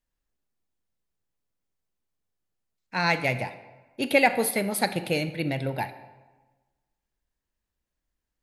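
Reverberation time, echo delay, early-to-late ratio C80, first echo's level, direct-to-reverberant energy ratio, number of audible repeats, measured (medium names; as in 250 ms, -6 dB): 1.2 s, no echo, 14.5 dB, no echo, 11.5 dB, no echo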